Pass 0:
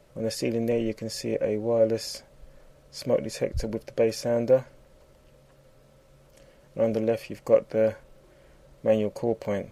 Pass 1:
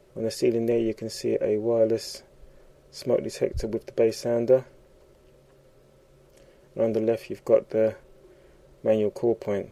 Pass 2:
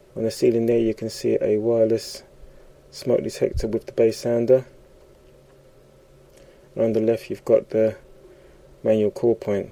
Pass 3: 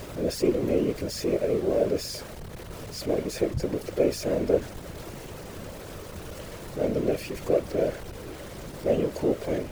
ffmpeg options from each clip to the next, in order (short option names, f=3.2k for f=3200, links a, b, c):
-af "equalizer=f=380:w=5:g=13,volume=-1.5dB"
-filter_complex "[0:a]acrossover=split=650|1300[a][b][c];[b]acompressor=threshold=-42dB:ratio=6[d];[c]asoftclip=type=tanh:threshold=-35dB[e];[a][d][e]amix=inputs=3:normalize=0,volume=5dB"
-af "aeval=exprs='val(0)+0.5*0.0335*sgn(val(0))':c=same,aeval=exprs='val(0)+0.0141*(sin(2*PI*50*n/s)+sin(2*PI*2*50*n/s)/2+sin(2*PI*3*50*n/s)/3+sin(2*PI*4*50*n/s)/4+sin(2*PI*5*50*n/s)/5)':c=same,afftfilt=real='hypot(re,im)*cos(2*PI*random(0))':imag='hypot(re,im)*sin(2*PI*random(1))':win_size=512:overlap=0.75"